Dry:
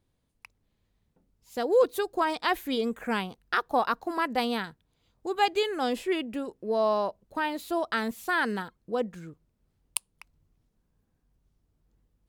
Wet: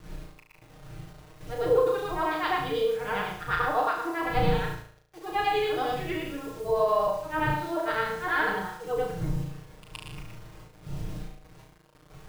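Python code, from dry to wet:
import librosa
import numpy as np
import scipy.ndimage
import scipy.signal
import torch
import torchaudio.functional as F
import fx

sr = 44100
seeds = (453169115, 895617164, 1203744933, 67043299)

p1 = fx.frame_reverse(x, sr, frame_ms=240.0)
p2 = fx.dmg_wind(p1, sr, seeds[0], corner_hz=160.0, level_db=-42.0)
p3 = scipy.signal.sosfilt(scipy.signal.butter(2, 3200.0, 'lowpass', fs=sr, output='sos'), p2)
p4 = fx.rider(p3, sr, range_db=3, speed_s=2.0)
p5 = p3 + (p4 * librosa.db_to_amplitude(-1.5))
p6 = fx.quant_dither(p5, sr, seeds[1], bits=8, dither='none')
p7 = fx.peak_eq(p6, sr, hz=240.0, db=-11.5, octaves=0.45)
p8 = p7 + 0.73 * np.pad(p7, (int(6.5 * sr / 1000.0), 0))[:len(p7)]
p9 = p8 + fx.room_flutter(p8, sr, wall_m=6.1, rt60_s=0.55, dry=0)
p10 = fx.end_taper(p9, sr, db_per_s=130.0)
y = p10 * librosa.db_to_amplitude(-4.5)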